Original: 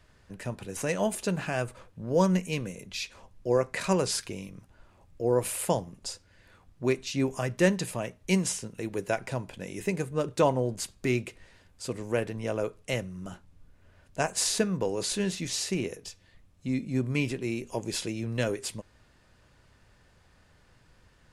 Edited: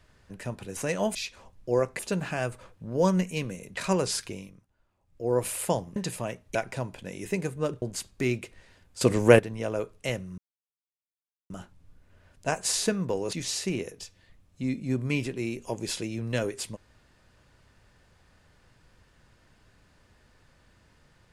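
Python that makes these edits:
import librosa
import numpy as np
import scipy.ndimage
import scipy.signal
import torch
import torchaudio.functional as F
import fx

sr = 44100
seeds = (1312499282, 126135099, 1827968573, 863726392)

y = fx.edit(x, sr, fx.move(start_s=2.93, length_s=0.84, to_s=1.15),
    fx.fade_down_up(start_s=4.32, length_s=1.04, db=-15.5, fade_s=0.33),
    fx.cut(start_s=5.96, length_s=1.75),
    fx.cut(start_s=8.3, length_s=0.8),
    fx.cut(start_s=10.37, length_s=0.29),
    fx.clip_gain(start_s=11.85, length_s=0.38, db=12.0),
    fx.insert_silence(at_s=13.22, length_s=1.12),
    fx.cut(start_s=15.05, length_s=0.33), tone=tone)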